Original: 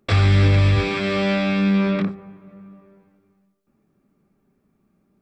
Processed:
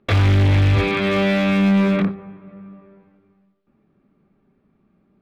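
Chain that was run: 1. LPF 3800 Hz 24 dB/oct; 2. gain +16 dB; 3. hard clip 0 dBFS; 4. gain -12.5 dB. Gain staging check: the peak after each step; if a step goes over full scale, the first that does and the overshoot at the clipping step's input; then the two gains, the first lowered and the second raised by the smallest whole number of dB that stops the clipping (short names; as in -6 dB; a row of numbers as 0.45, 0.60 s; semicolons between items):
-7.5, +8.5, 0.0, -12.5 dBFS; step 2, 8.5 dB; step 2 +7 dB, step 4 -3.5 dB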